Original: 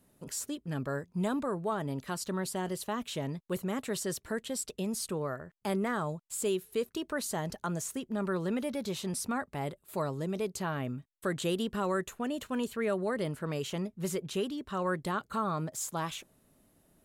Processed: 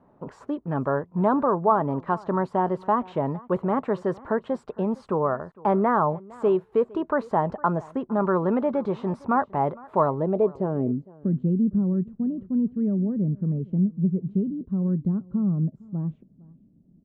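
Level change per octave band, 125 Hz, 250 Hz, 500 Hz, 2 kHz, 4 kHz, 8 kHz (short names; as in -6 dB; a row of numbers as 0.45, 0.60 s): +10.5 dB, +10.0 dB, +9.0 dB, +1.5 dB, under -10 dB, under -25 dB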